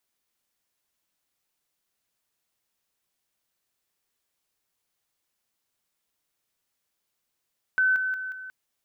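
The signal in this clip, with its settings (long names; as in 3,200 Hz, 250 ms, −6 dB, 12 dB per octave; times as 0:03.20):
level staircase 1,520 Hz −18.5 dBFS, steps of −6 dB, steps 4, 0.18 s 0.00 s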